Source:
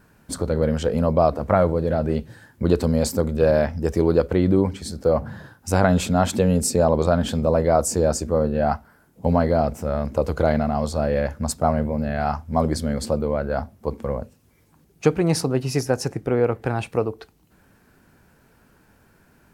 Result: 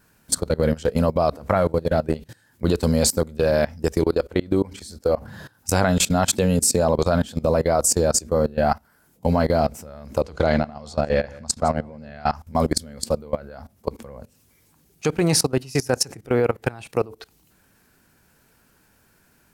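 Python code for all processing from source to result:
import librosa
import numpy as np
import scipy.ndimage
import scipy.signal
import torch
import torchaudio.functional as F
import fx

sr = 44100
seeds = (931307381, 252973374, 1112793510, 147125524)

y = fx.chain(x, sr, fx.peak_eq(hz=150.0, db=-7.0, octaves=0.43),
    fx.level_steps(step_db=9), at=(4.04, 5.28))
y = fx.chain(y, sr, fx.lowpass(hz=6300.0, slope=12),
    fx.low_shelf(hz=80.0, db=-3.5),
    fx.echo_single(ms=163, db=-17.5), at=(10.21, 12.34))
y = fx.high_shelf(y, sr, hz=2400.0, db=10.5)
y = fx.level_steps(y, sr, step_db=21)
y = y * librosa.db_to_amplitude(3.0)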